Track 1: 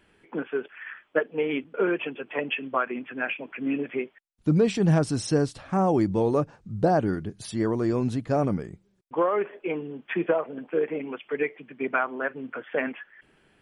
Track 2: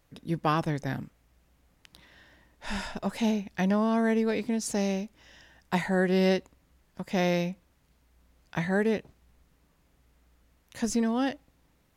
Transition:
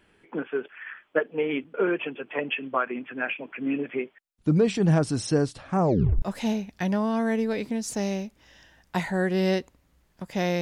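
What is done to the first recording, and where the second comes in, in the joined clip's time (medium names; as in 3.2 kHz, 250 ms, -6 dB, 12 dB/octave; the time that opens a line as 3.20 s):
track 1
5.79 s: tape stop 0.43 s
6.22 s: go over to track 2 from 3.00 s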